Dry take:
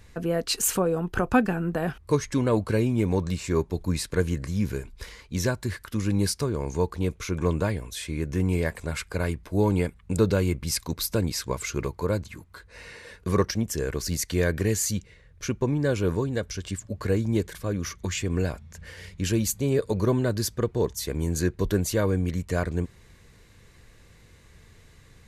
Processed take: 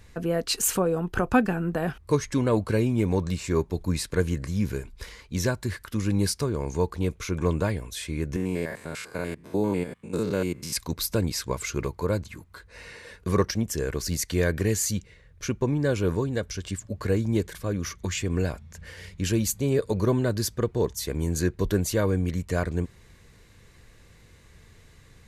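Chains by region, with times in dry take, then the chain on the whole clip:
8.36–10.76 stepped spectrum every 0.1 s + HPF 170 Hz
whole clip: dry

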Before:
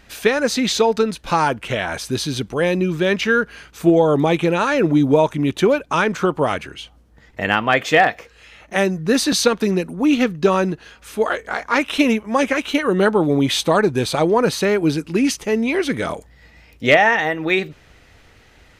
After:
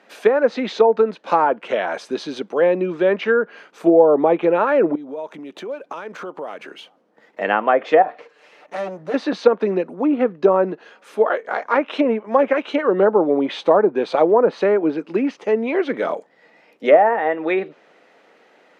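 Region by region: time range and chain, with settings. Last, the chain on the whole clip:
4.95–7.4 median filter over 5 samples + high shelf 4600 Hz +6 dB + compressor 16:1, threshold -27 dBFS
8.02–9.14 minimum comb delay 6.7 ms + compressor 3:1, threshold -25 dBFS
whole clip: steep high-pass 190 Hz 36 dB/oct; treble ducked by the level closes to 1100 Hz, closed at -11 dBFS; EQ curve 240 Hz 0 dB, 540 Hz +10 dB, 12000 Hz -10 dB; gain -5 dB

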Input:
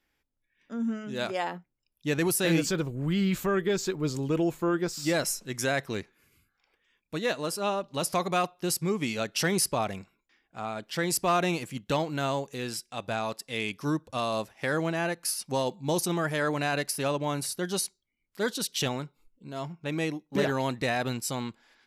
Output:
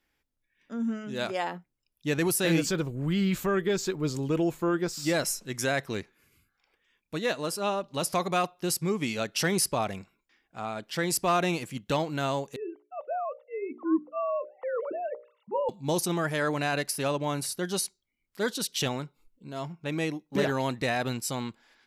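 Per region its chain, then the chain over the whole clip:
12.56–15.69 sine-wave speech + polynomial smoothing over 65 samples + notches 60/120/180/240/300/360/420/480/540/600 Hz
whole clip: dry

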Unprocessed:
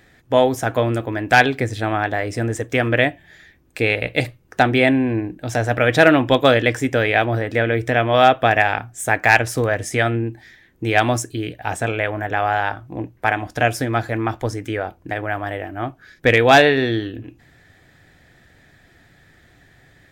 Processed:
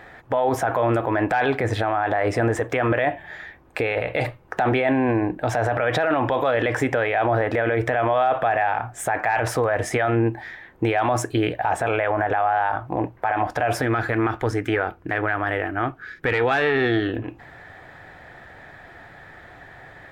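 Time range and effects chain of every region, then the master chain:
13.82–17.09 band shelf 760 Hz -10 dB 1.2 oct + tube stage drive 7 dB, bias 0.4
whole clip: EQ curve 260 Hz 0 dB, 890 Hz +14 dB, 6200 Hz -7 dB; limiter -15 dBFS; gain +3 dB

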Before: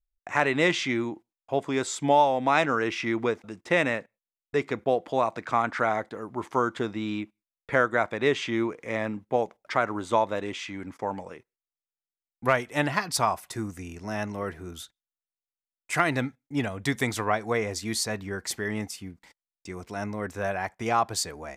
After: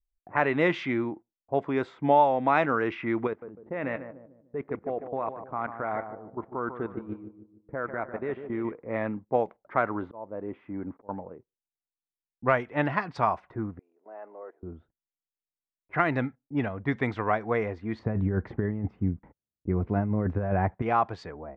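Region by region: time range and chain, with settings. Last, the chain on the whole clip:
3.27–8.72 level quantiser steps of 15 dB + darkening echo 0.149 s, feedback 46%, low-pass 3600 Hz, level -9 dB
10.02–11.09 bell 340 Hz +3 dB 2.3 oct + auto swell 0.594 s
13.79–14.63 level quantiser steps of 18 dB + HPF 450 Hz 24 dB/oct + high shelf 3900 Hz +9 dB
17.99–20.82 HPF 73 Hz + tilt -4.5 dB/oct + negative-ratio compressor -25 dBFS, ratio -0.5
whole clip: low-pass opened by the level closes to 340 Hz, open at -20.5 dBFS; LPF 2000 Hz 12 dB/oct

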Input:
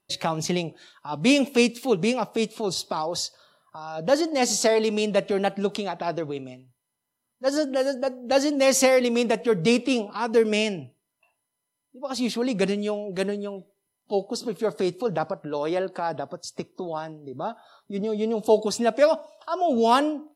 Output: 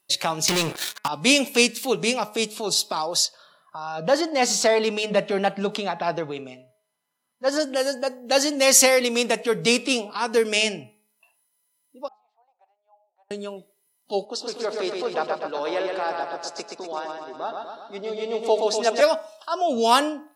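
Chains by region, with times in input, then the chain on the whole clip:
0.48–1.08 sample leveller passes 5 + compressor 4:1, threshold -21 dBFS
3.25–7.6 bell 170 Hz +9.5 dB 0.78 oct + overdrive pedal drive 10 dB, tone 1500 Hz, clips at -7 dBFS
12.08–13.31 Butterworth band-pass 790 Hz, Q 4.1 + differentiator
14.25–19.01 HPF 330 Hz + air absorption 110 m + feedback echo 0.124 s, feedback 59%, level -4 dB
whole clip: tilt +2.5 dB/oct; de-hum 211.5 Hz, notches 12; gain +2 dB

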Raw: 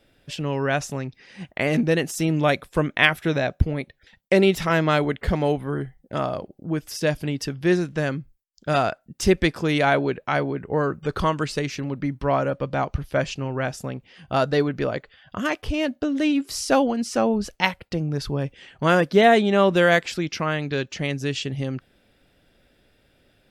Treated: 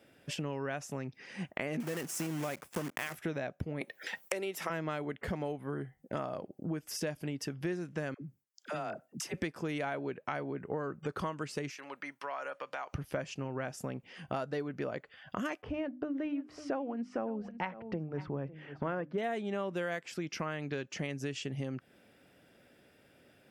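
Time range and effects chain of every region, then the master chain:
1.8–3.18 block floating point 3-bit + compressor 2.5:1, threshold -21 dBFS
3.81–4.7 HPF 370 Hz + high shelf 9000 Hz +10.5 dB + three-band squash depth 70%
8.14–9.34 HPF 130 Hz + compressor 2.5:1, threshold -35 dBFS + dispersion lows, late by 71 ms, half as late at 570 Hz
11.71–12.93 HPF 970 Hz + compressor 3:1, threshold -35 dBFS
15.62–19.18 LPF 1800 Hz + notches 50/100/150/200/250/300 Hz + echo 0.552 s -19 dB
whole clip: HPF 130 Hz 12 dB/oct; compressor 6:1, threshold -34 dBFS; bell 3900 Hz -7.5 dB 0.56 oct

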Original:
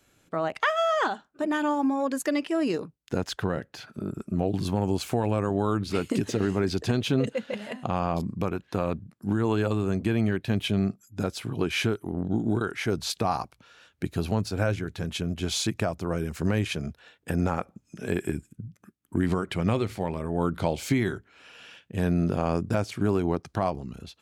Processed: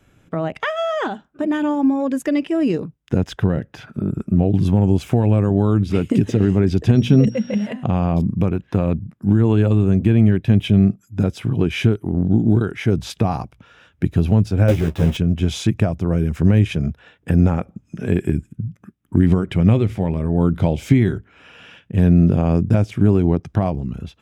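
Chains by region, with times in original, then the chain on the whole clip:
6.95–7.65 bell 200 Hz +8.5 dB 0.48 oct + notches 60/120/180/240/300/360 Hz + whine 5600 Hz -44 dBFS
14.68–15.17 block floating point 3-bit + bell 500 Hz +6 dB 1.3 oct + doubler 13 ms -4 dB
whole clip: tone controls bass +8 dB, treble -9 dB; notch 4300 Hz, Q 6.2; dynamic EQ 1200 Hz, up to -7 dB, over -41 dBFS, Q 1; gain +6 dB

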